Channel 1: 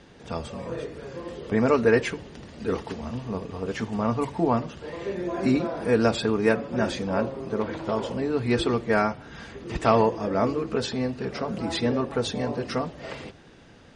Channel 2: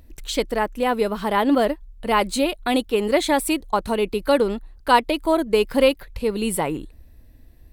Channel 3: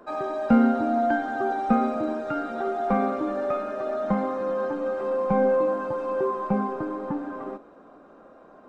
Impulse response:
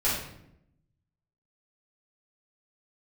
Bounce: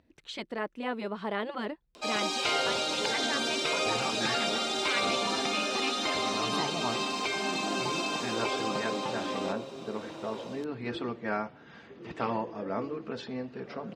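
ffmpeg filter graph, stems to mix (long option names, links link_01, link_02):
-filter_complex "[0:a]adelay=2350,volume=-8.5dB,asplit=3[link_01][link_02][link_03];[link_01]atrim=end=5.41,asetpts=PTS-STARTPTS,afade=type=out:start_time=5.406:duration=0.004:curve=hsin[link_04];[link_02]atrim=start=5.41:end=6.07,asetpts=PTS-STARTPTS,volume=0[link_05];[link_03]atrim=start=6.07,asetpts=PTS-STARTPTS,afade=type=in:duration=0.004:curve=hsin[link_06];[link_04][link_05][link_06]concat=n=3:v=0:a=1[link_07];[1:a]volume=-9dB[link_08];[2:a]aemphasis=mode=production:type=50fm,dynaudnorm=framelen=100:gausssize=5:maxgain=5dB,aexciter=amount=15.3:drive=6.5:freq=2500,adelay=1950,volume=-3.5dB[link_09];[link_07][link_08][link_09]amix=inputs=3:normalize=0,afftfilt=real='re*lt(hypot(re,im),0.251)':imag='im*lt(hypot(re,im),0.251)':win_size=1024:overlap=0.75,highpass=150,lowpass=3900"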